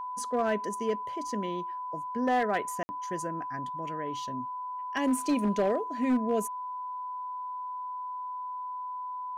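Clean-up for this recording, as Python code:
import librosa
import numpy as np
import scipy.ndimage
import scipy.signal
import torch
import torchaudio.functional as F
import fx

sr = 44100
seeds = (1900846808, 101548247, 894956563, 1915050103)

y = fx.fix_declip(x, sr, threshold_db=-20.5)
y = fx.notch(y, sr, hz=1000.0, q=30.0)
y = fx.fix_interpolate(y, sr, at_s=(2.83,), length_ms=60.0)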